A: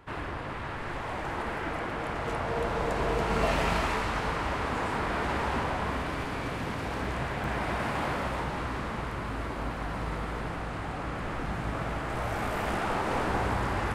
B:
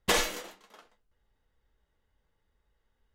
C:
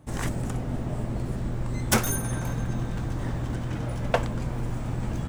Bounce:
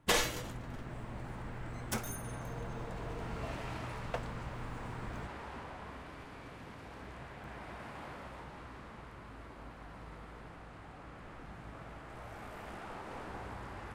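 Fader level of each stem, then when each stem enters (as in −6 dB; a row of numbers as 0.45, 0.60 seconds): −16.0, −3.5, −15.0 decibels; 0.00, 0.00, 0.00 seconds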